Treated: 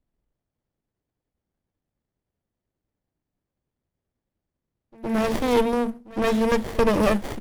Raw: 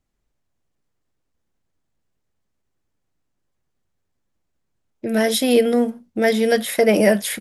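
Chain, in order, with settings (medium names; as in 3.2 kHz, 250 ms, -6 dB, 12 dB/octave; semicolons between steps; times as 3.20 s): reverse echo 113 ms -20.5 dB; sliding maximum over 33 samples; trim -1.5 dB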